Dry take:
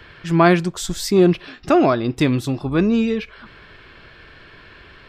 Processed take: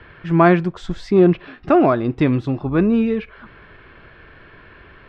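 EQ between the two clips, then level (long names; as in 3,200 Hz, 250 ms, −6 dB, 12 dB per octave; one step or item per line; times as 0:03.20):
low-pass filter 2,100 Hz 12 dB per octave
+1.0 dB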